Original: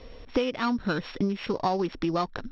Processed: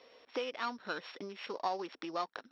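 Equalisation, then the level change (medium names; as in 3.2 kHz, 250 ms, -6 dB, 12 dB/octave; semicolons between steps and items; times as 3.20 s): high-pass 500 Hz 12 dB/octave; -7.0 dB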